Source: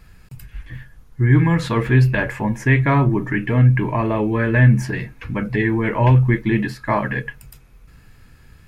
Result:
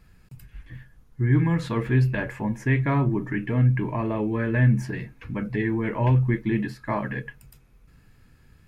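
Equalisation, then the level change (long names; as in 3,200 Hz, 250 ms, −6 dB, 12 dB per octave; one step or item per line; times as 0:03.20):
parametric band 230 Hz +4 dB 2.2 octaves
−9.0 dB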